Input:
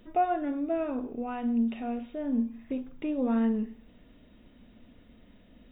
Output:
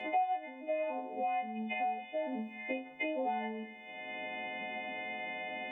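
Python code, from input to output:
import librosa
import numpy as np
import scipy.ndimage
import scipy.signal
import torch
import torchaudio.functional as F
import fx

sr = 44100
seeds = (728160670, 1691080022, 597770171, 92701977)

y = fx.freq_snap(x, sr, grid_st=3)
y = fx.double_bandpass(y, sr, hz=1300.0, octaves=1.5)
y = fx.band_squash(y, sr, depth_pct=100)
y = y * 10.0 ** (8.0 / 20.0)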